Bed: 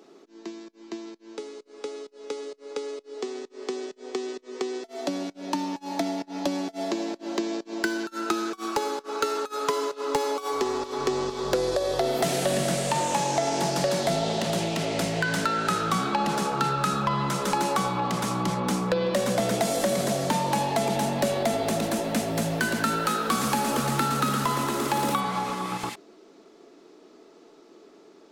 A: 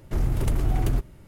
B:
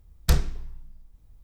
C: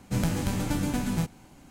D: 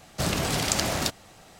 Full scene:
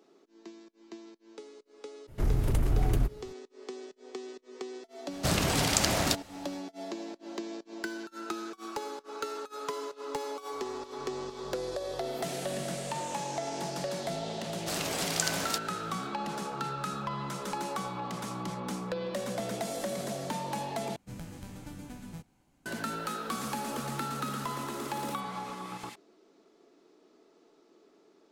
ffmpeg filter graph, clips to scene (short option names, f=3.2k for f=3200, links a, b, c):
-filter_complex "[4:a]asplit=2[a][b];[0:a]volume=-10dB[c];[b]bass=f=250:g=-13,treble=f=4k:g=3[d];[c]asplit=2[e][f];[e]atrim=end=20.964[g];[3:a]atrim=end=1.7,asetpts=PTS-STARTPTS,volume=-16.5dB[h];[f]atrim=start=22.656[i];[1:a]atrim=end=1.27,asetpts=PTS-STARTPTS,volume=-3dB,afade=t=in:d=0.02,afade=t=out:st=1.25:d=0.02,adelay=2070[j];[a]atrim=end=1.59,asetpts=PTS-STARTPTS,volume=-1dB,afade=t=in:d=0.1,afade=t=out:st=1.49:d=0.1,adelay=222705S[k];[d]atrim=end=1.59,asetpts=PTS-STARTPTS,volume=-6.5dB,afade=t=in:d=0.004:c=hsin,afade=t=out:st=1.586:d=0.004:c=hsin,adelay=14480[l];[g][h]acrossfade=d=0.004:c1=hsin:c2=hsin[m];[m][i]acrossfade=d=0.004:c1=hsin:c2=hsin[n];[n][j][k][l]amix=inputs=4:normalize=0"